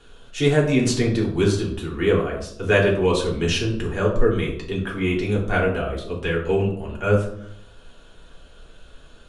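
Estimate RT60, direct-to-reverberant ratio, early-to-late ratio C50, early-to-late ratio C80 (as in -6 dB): 0.70 s, -3.0 dB, 6.5 dB, 9.5 dB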